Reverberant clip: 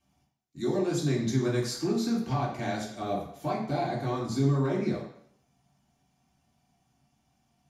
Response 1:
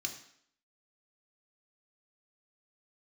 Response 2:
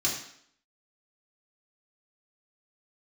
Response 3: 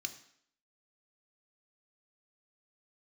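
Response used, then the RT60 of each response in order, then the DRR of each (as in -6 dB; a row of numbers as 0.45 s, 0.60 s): 2; 0.65 s, 0.65 s, 0.65 s; 3.5 dB, -4.5 dB, 7.5 dB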